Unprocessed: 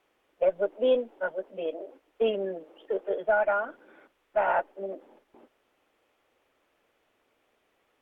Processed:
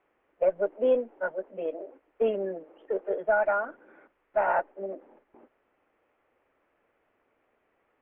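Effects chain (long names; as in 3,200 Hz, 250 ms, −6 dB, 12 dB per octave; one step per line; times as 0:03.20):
one scale factor per block 7 bits
low-pass filter 2,300 Hz 24 dB per octave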